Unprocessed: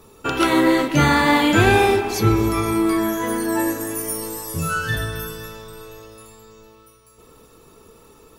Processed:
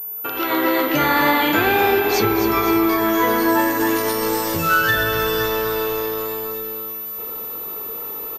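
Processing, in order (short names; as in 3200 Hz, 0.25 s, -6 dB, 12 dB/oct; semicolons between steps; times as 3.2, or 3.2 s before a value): in parallel at -10.5 dB: requantised 6-bit, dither none; on the sum: compressor 4:1, threshold -25 dBFS, peak gain reduction 14 dB; tone controls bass -13 dB, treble -3 dB; on a send: feedback echo 0.255 s, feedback 56%, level -9.5 dB; on the sum: AGC gain up to 16 dB; pulse-width modulation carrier 14000 Hz; gain -3 dB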